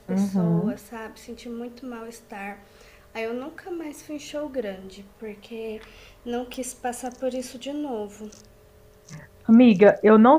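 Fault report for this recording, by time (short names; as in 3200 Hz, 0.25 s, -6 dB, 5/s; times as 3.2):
6.54 pop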